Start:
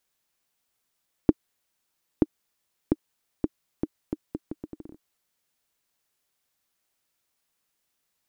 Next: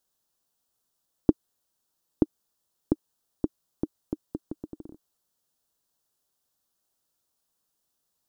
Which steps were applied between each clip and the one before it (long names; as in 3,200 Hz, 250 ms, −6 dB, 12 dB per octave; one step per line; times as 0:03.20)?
parametric band 2,200 Hz −14.5 dB 0.72 octaves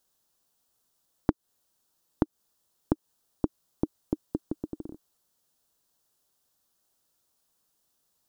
downward compressor 6 to 1, threshold −25 dBFS, peak gain reduction 11.5 dB
level +4 dB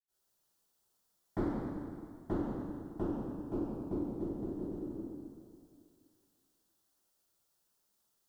convolution reverb RT60 2.2 s, pre-delay 77 ms
level +1 dB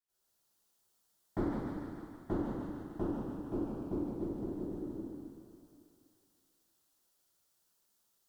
pitch vibrato 0.53 Hz 7.8 cents
delay with a high-pass on its return 152 ms, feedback 68%, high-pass 1,400 Hz, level −4 dB